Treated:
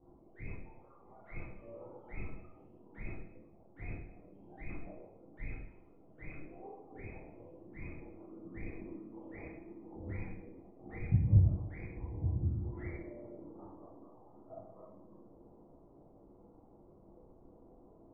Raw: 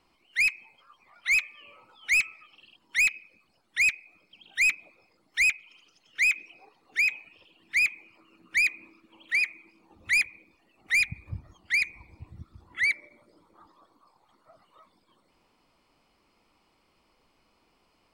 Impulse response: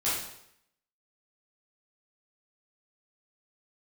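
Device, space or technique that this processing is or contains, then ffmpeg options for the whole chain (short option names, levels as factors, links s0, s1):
next room: -filter_complex "[0:a]lowpass=f=640:w=0.5412,lowpass=f=640:w=1.3066[s0];[1:a]atrim=start_sample=2205[s1];[s0][s1]afir=irnorm=-1:irlink=0,volume=1.68"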